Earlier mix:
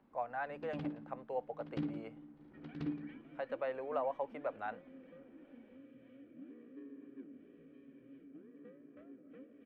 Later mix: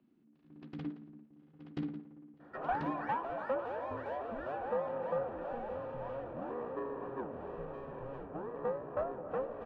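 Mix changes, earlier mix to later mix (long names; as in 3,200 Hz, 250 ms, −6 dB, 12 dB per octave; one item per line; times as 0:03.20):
speech: muted
second sound: remove formant filter i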